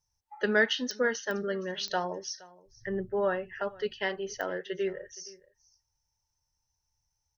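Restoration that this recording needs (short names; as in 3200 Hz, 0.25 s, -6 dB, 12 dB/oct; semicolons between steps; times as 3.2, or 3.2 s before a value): de-click; inverse comb 0.469 s -22 dB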